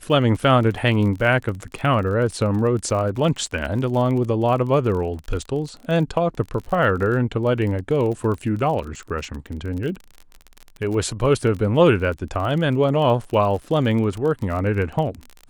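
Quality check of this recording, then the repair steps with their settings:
crackle 34/s -28 dBFS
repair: de-click

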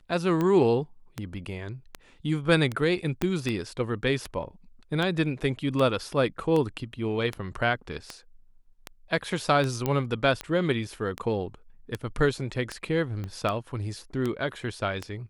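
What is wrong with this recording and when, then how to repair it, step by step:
tick 78 rpm -16 dBFS
3.22 pop -12 dBFS
9.86 pop -13 dBFS
13.24 pop -23 dBFS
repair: de-click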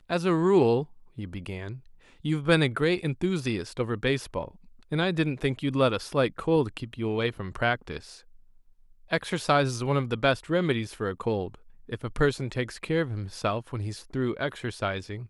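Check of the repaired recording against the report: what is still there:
3.22 pop
9.86 pop
13.24 pop

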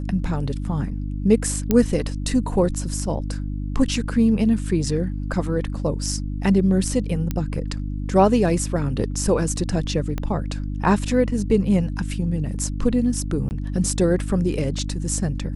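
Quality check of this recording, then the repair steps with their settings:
hum 50 Hz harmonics 6 -27 dBFS
1.71 pop -6 dBFS
7.31 pop -11 dBFS
10.18 pop -14 dBFS
13.49–13.51 gap 19 ms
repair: de-click; de-hum 50 Hz, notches 6; interpolate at 13.49, 19 ms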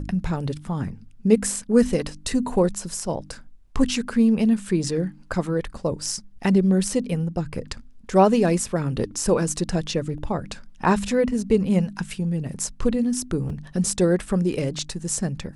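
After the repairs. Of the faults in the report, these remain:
10.18 pop

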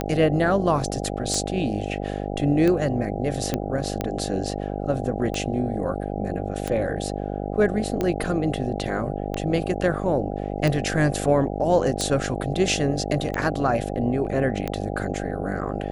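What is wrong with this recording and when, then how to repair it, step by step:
buzz 50 Hz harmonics 16 -29 dBFS
tick 45 rpm -12 dBFS
3.54 pop -10 dBFS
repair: de-click; de-hum 50 Hz, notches 16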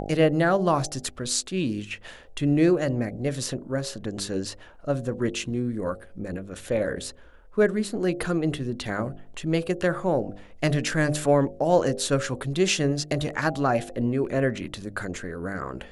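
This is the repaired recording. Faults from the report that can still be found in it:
none

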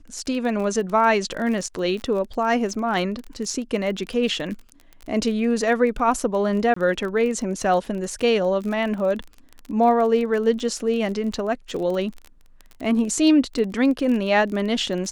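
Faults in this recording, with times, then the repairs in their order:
crackle 28/s -29 dBFS
6.74–6.76 gap 24 ms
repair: de-click; interpolate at 6.74, 24 ms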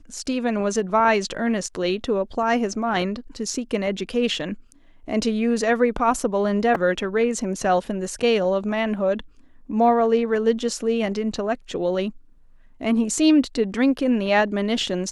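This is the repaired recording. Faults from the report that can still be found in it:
none

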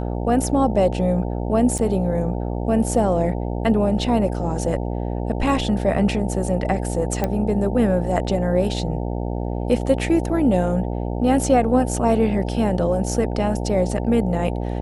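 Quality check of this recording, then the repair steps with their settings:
buzz 60 Hz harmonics 15 -25 dBFS
1.78–1.79 gap 6.7 ms
7.24 pop -9 dBFS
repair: de-click; de-hum 60 Hz, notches 15; interpolate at 1.78, 6.7 ms

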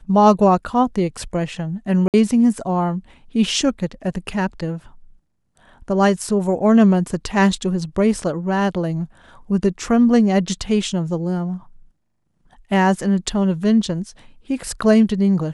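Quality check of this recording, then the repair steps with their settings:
2.08–2.14 gap 58 ms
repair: interpolate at 2.08, 58 ms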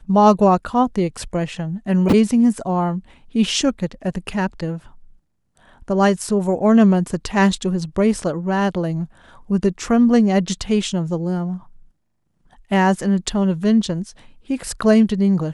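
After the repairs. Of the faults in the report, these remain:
none

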